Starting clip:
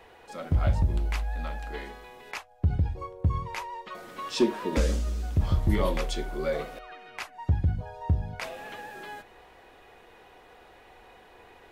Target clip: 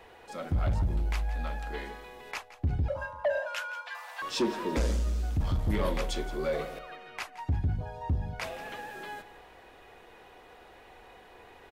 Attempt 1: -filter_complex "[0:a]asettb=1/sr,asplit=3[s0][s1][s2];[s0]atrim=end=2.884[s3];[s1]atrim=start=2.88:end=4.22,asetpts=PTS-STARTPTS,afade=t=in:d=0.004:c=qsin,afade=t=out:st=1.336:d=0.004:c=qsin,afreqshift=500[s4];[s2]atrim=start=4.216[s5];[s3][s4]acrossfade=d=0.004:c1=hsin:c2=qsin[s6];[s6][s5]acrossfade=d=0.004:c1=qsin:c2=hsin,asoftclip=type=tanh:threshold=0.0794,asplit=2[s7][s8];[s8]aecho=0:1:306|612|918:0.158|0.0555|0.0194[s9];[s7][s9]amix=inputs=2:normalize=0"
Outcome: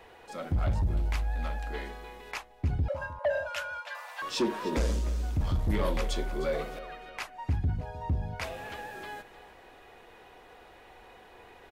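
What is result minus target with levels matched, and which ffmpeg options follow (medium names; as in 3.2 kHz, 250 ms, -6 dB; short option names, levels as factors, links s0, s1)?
echo 136 ms late
-filter_complex "[0:a]asettb=1/sr,asplit=3[s0][s1][s2];[s0]atrim=end=2.884[s3];[s1]atrim=start=2.88:end=4.22,asetpts=PTS-STARTPTS,afade=t=in:d=0.004:c=qsin,afade=t=out:st=1.336:d=0.004:c=qsin,afreqshift=500[s4];[s2]atrim=start=4.216[s5];[s3][s4]acrossfade=d=0.004:c1=hsin:c2=qsin[s6];[s6][s5]acrossfade=d=0.004:c1=qsin:c2=hsin,asoftclip=type=tanh:threshold=0.0794,asplit=2[s7][s8];[s8]aecho=0:1:170|340|510:0.158|0.0555|0.0194[s9];[s7][s9]amix=inputs=2:normalize=0"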